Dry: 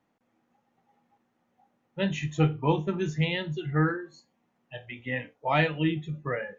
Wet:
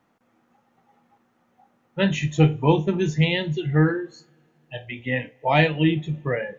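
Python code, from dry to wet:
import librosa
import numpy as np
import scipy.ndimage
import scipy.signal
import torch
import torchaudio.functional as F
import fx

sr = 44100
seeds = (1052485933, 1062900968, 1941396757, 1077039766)

y = fx.peak_eq(x, sr, hz=1300.0, db=fx.steps((0.0, 4.5), (2.16, -9.0)), octaves=0.54)
y = fx.rev_double_slope(y, sr, seeds[0], early_s=0.21, late_s=2.5, knee_db=-22, drr_db=18.5)
y = y * 10.0 ** (7.0 / 20.0)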